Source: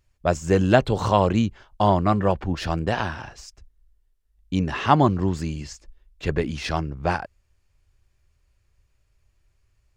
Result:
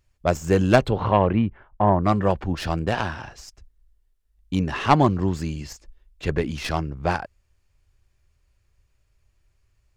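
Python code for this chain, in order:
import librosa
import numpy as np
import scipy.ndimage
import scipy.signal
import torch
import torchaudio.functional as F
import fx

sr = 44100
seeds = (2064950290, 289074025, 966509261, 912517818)

y = fx.tracing_dist(x, sr, depth_ms=0.098)
y = fx.lowpass(y, sr, hz=fx.line((0.89, 3200.0), (2.03, 1700.0)), slope=24, at=(0.89, 2.03), fade=0.02)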